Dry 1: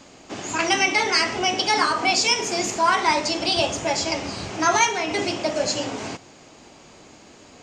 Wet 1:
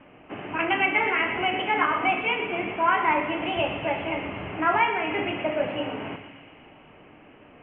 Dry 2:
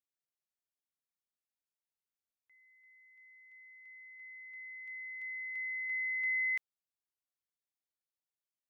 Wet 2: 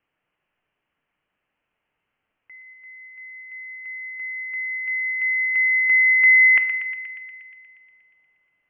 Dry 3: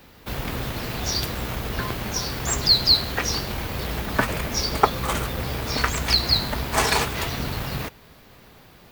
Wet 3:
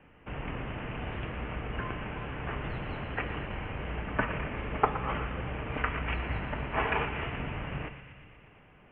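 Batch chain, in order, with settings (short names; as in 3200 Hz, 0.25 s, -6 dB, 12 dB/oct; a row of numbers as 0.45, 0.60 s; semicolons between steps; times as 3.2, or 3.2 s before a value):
steep low-pass 3000 Hz 96 dB/oct; thinning echo 0.119 s, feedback 79%, high-pass 1000 Hz, level -9.5 dB; shoebox room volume 600 m³, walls mixed, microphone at 0.44 m; normalise peaks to -9 dBFS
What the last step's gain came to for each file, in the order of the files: -3.0, +23.0, -8.0 dB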